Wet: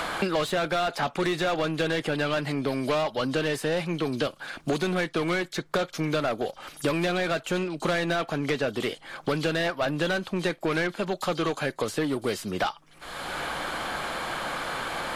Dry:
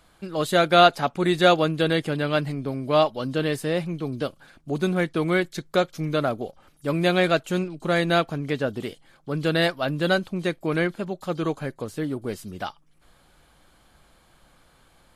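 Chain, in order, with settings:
brickwall limiter −13 dBFS, peak gain reduction 9.5 dB
mid-hump overdrive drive 19 dB, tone 4,300 Hz, clips at −13 dBFS
multiband upward and downward compressor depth 100%
level −5.5 dB

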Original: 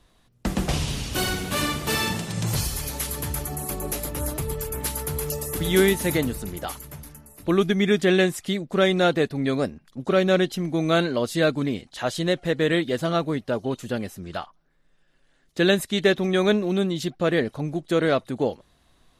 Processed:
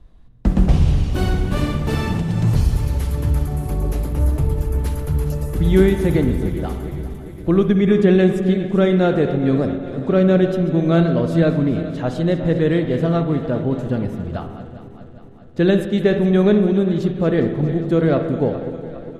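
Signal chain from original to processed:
feedback delay that plays each chunk backwards 204 ms, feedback 74%, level −13 dB
spectral tilt −3.5 dB per octave
spring reverb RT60 1.3 s, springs 48/60 ms, chirp 20 ms, DRR 8 dB
level −1 dB

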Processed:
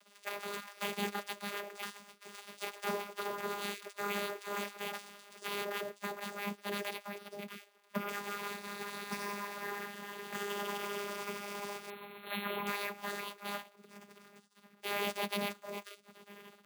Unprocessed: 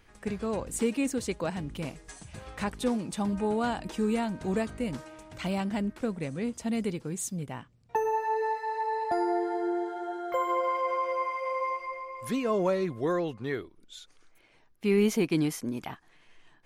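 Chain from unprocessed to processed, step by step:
variable-slope delta modulation 64 kbit/s
gate on every frequency bin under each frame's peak −25 dB weak
in parallel at −1 dB: brickwall limiter −38 dBFS, peak gain reduction 10.5 dB
on the sum: flanger 1.5 Hz, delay 5.3 ms, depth 1.6 ms, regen +75%
channel vocoder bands 16, saw 203 Hz
0:06.91–0:08.09: treble cut that deepens with the level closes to 2,800 Hz, closed at −46 dBFS
0:11.90–0:12.67: linear-phase brick-wall low-pass 4,300 Hz
bad sample-rate conversion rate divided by 3×, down none, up hold
level +10.5 dB

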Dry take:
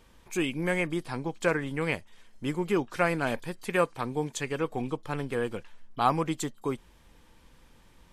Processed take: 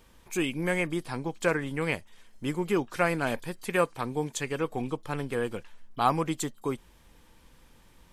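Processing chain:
high-shelf EQ 10,000 Hz +6.5 dB

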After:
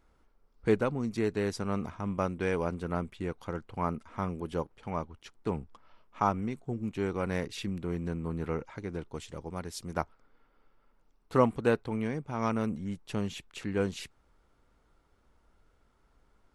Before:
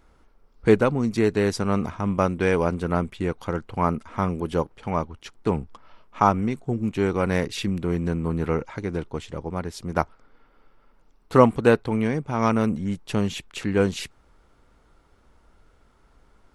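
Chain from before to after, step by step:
0:09.10–0:09.95: high-shelf EQ 5,000 Hz → 3,600 Hz +10.5 dB
level −9 dB

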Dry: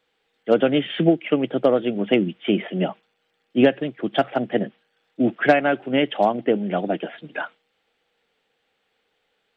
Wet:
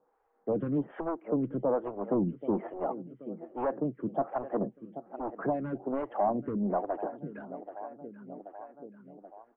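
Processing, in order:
on a send: repeating echo 781 ms, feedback 56%, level −20 dB
on the sum: soft clipping −19 dBFS, distortion −7 dB
transistor ladder low-pass 1,200 Hz, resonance 45%
low-shelf EQ 480 Hz +5 dB
in parallel at +3 dB: downward compressor, threshold −43 dBFS, peak gain reduction 17 dB
on the sum: phaser with staggered stages 1.2 Hz

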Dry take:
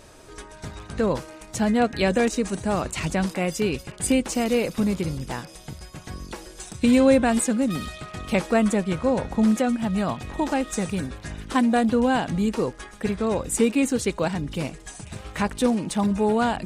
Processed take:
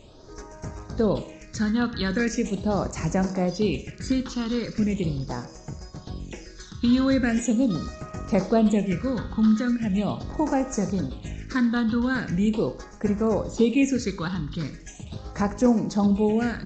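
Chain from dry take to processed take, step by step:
all-pass phaser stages 6, 0.4 Hz, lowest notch 610–3,500 Hz
four-comb reverb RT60 0.6 s, combs from 29 ms, DRR 12 dB
downsampling to 16,000 Hz

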